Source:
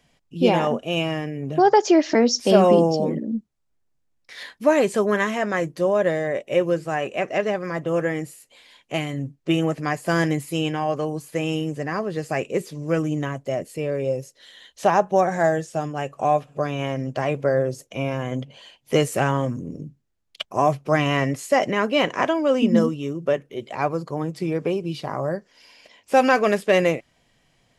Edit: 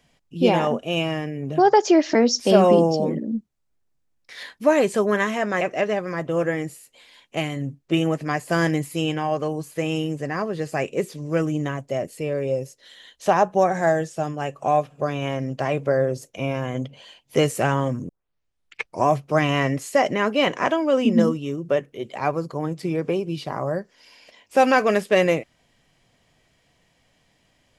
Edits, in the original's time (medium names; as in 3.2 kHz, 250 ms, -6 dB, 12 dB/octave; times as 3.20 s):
5.61–7.18 s: delete
19.66 s: tape start 0.97 s